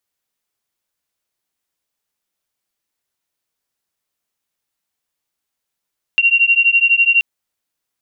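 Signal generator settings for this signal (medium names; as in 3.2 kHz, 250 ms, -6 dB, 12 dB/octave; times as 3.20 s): beating tones 2.75 kHz, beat 12 Hz, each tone -13 dBFS 1.03 s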